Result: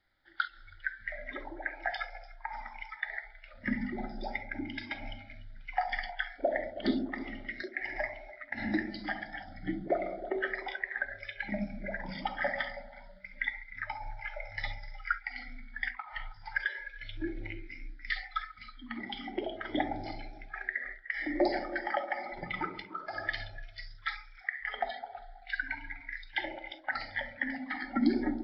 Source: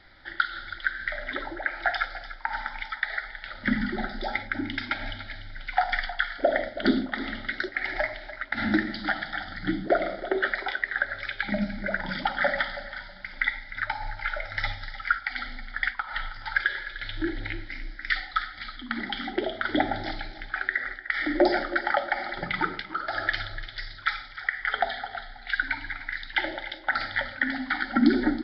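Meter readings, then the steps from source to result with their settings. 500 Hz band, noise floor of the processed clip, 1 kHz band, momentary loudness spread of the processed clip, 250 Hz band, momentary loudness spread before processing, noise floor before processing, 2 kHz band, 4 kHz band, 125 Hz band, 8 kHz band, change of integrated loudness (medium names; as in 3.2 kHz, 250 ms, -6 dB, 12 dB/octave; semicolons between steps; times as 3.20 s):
-6.5 dB, -53 dBFS, -7.5 dB, 10 LU, -6.5 dB, 9 LU, -44 dBFS, -8.5 dB, -9.5 dB, -7.0 dB, no reading, -7.5 dB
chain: feedback echo behind a low-pass 68 ms, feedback 72%, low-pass 2.6 kHz, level -13 dB; spectral noise reduction 15 dB; trim -7 dB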